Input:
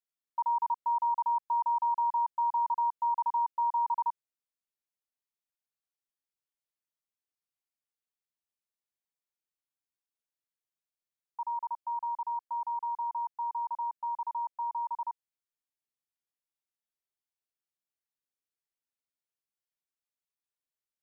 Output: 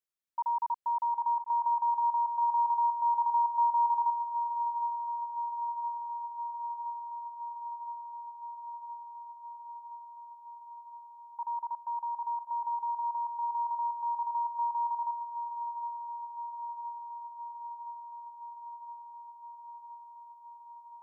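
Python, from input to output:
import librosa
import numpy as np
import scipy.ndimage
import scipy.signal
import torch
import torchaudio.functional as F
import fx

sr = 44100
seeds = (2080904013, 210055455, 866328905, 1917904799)

y = fx.echo_swing(x, sr, ms=1018, ratio=3, feedback_pct=74, wet_db=-13.0)
y = F.gain(torch.from_numpy(y), -1.5).numpy()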